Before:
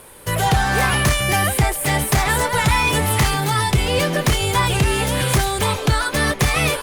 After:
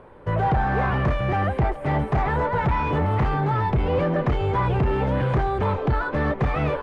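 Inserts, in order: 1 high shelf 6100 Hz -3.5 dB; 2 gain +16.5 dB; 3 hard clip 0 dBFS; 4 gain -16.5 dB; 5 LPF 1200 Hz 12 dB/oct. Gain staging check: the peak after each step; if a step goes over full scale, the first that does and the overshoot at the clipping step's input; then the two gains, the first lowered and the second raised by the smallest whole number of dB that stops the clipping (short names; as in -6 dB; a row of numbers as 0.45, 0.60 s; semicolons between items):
-8.5, +8.0, 0.0, -16.5, -16.0 dBFS; step 2, 8.0 dB; step 2 +8.5 dB, step 4 -8.5 dB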